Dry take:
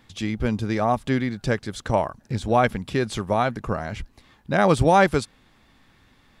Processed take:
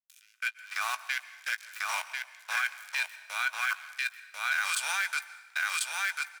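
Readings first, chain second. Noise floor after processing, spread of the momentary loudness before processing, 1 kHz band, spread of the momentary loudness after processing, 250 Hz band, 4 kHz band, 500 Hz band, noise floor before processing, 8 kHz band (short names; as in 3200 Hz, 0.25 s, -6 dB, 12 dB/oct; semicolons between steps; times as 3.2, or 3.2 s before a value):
-61 dBFS, 12 LU, -13.0 dB, 7 LU, under -40 dB, +0.5 dB, -32.5 dB, -59 dBFS, +4.0 dB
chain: spectral swells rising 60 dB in 0.33 s; dynamic EQ 2200 Hz, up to +4 dB, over -33 dBFS, Q 0.93; level quantiser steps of 22 dB; crossover distortion -38 dBFS; HPF 1100 Hz 24 dB/oct; tilt +4.5 dB/oct; echo 1.043 s -4 dB; rotary speaker horn 1 Hz; small resonant body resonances 1500/2400 Hz, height 12 dB, ringing for 30 ms; limiter -19 dBFS, peak gain reduction 11 dB; doubler 17 ms -13 dB; plate-style reverb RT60 1.2 s, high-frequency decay 0.8×, pre-delay 0.115 s, DRR 15.5 dB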